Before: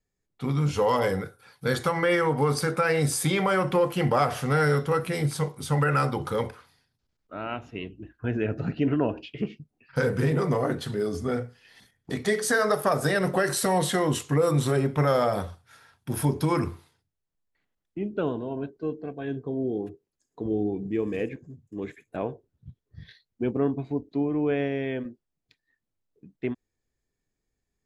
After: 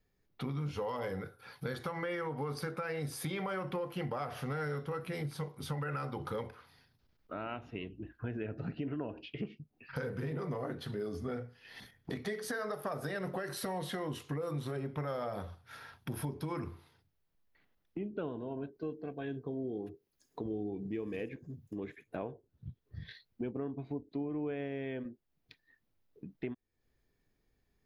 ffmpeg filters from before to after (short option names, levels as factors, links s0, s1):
-filter_complex "[0:a]asettb=1/sr,asplit=3[s0][s1][s2];[s0]atrim=end=18.744[s3];[s1]atrim=start=18.74:end=21.78,asetpts=PTS-STARTPTS,afade=t=in:d=0.004:c=qsin,afade=t=out:st=3.036:d=0.004:c=qsin,highshelf=f=3700:g=8[s4];[s2]atrim=start=21.776[s5];[s3][s4]acrossfade=d=0.004:c1=hsin:c2=qsin[s6];[s6][s5]acrossfade=d=0.004:c1=qsin:c2=hsin,equalizer=f=7700:w=1.9:g=-14,alimiter=limit=0.141:level=0:latency=1:release=334,acompressor=threshold=0.00355:ratio=2.5,volume=1.88"